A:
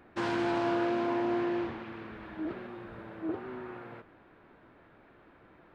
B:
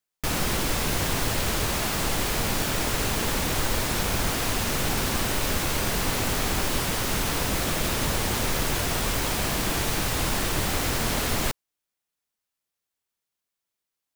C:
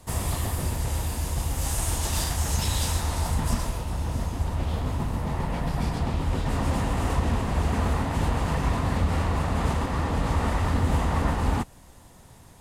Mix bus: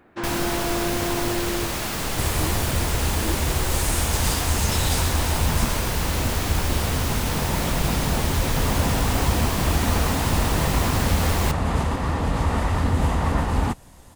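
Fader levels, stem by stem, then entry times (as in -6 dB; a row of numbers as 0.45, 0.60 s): +2.5, -1.0, +2.5 dB; 0.00, 0.00, 2.10 s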